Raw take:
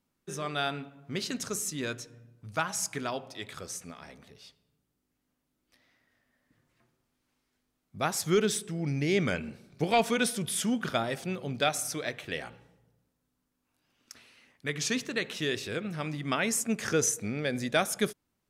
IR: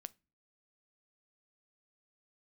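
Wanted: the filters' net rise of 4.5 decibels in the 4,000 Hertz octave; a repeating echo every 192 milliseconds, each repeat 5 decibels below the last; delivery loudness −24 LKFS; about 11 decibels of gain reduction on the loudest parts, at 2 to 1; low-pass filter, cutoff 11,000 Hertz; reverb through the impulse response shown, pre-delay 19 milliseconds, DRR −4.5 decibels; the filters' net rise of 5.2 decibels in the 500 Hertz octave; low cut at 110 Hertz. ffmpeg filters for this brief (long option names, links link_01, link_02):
-filter_complex "[0:a]highpass=110,lowpass=11000,equalizer=frequency=500:width_type=o:gain=6.5,equalizer=frequency=4000:width_type=o:gain=5.5,acompressor=threshold=-37dB:ratio=2,aecho=1:1:192|384|576|768|960|1152|1344:0.562|0.315|0.176|0.0988|0.0553|0.031|0.0173,asplit=2[link_01][link_02];[1:a]atrim=start_sample=2205,adelay=19[link_03];[link_02][link_03]afir=irnorm=-1:irlink=0,volume=10dB[link_04];[link_01][link_04]amix=inputs=2:normalize=0,volume=5dB"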